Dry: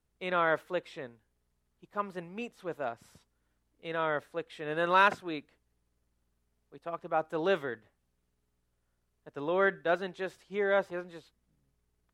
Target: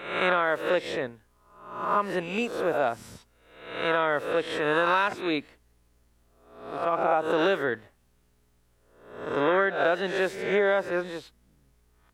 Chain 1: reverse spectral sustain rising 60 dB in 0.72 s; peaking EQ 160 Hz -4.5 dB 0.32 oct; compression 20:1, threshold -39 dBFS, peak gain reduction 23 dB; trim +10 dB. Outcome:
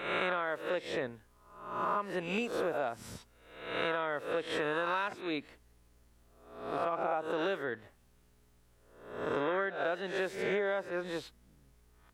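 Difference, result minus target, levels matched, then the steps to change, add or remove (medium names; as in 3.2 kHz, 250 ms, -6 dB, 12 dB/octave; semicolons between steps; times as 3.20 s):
compression: peak gain reduction +9.5 dB
change: compression 20:1, threshold -29 dBFS, peak gain reduction 13.5 dB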